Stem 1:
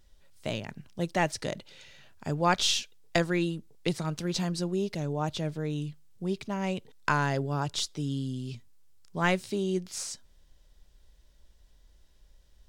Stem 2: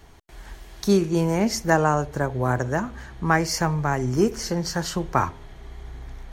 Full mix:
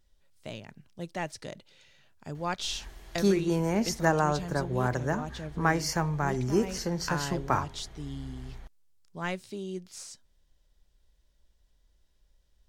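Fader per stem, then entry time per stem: -7.5, -5.5 dB; 0.00, 2.35 s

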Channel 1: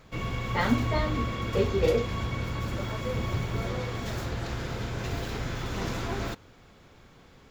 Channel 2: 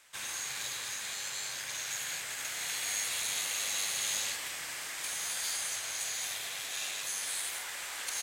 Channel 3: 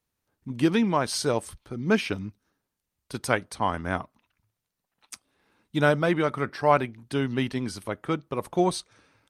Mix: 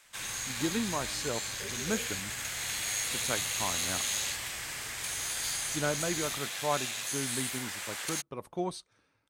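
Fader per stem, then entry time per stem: -20.0, +1.0, -10.5 dB; 0.05, 0.00, 0.00 s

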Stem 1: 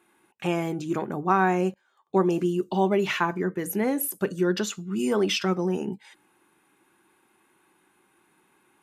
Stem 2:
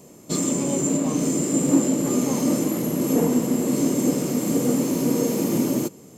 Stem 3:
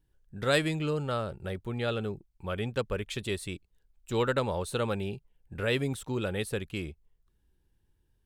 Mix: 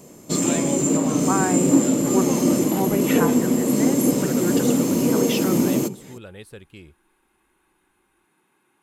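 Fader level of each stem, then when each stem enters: -2.5, +2.0, -8.5 dB; 0.00, 0.00, 0.00 s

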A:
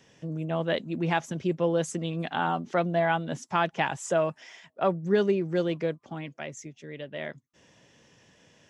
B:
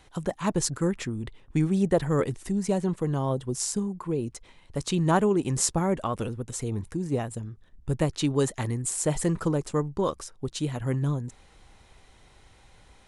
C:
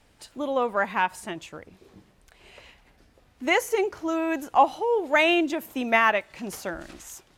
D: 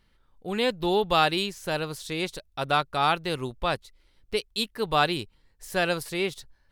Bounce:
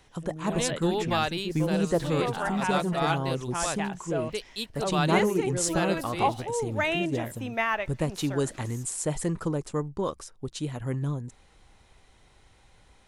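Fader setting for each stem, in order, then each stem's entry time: -7.0, -3.0, -7.0, -6.0 dB; 0.00, 0.00, 1.65, 0.00 s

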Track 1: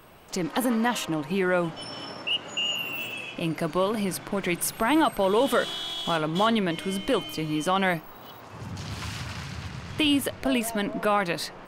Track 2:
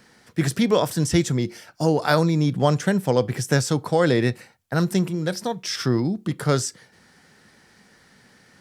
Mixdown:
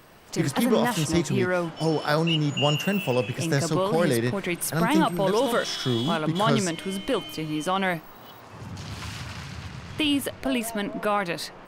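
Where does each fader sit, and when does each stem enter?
-1.0, -4.5 dB; 0.00, 0.00 s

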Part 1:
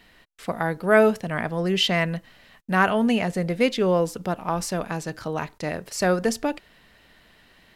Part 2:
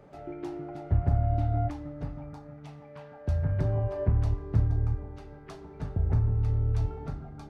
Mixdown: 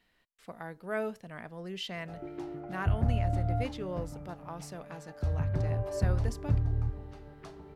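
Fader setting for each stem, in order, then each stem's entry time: -17.0, -3.0 dB; 0.00, 1.95 s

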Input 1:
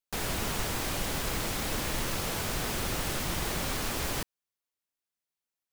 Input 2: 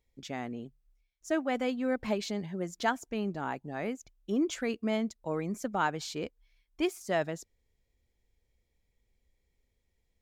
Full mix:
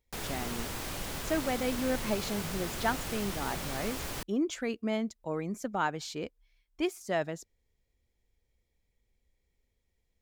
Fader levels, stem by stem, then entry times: -5.5, -1.0 dB; 0.00, 0.00 s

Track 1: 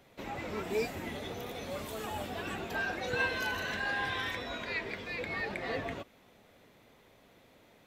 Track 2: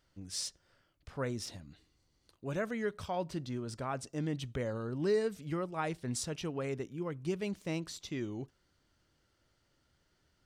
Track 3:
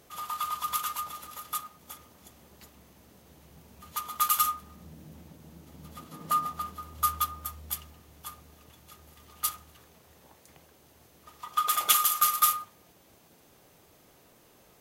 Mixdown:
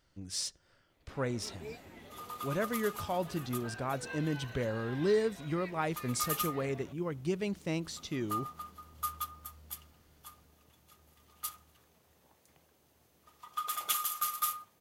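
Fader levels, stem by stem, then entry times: -13.0, +2.0, -9.5 dB; 0.90, 0.00, 2.00 s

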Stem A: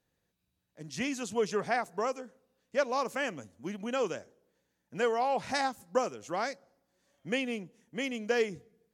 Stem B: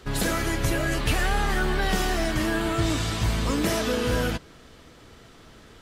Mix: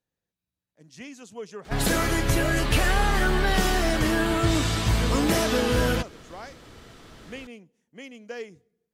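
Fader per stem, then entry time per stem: -8.0, +2.0 dB; 0.00, 1.65 s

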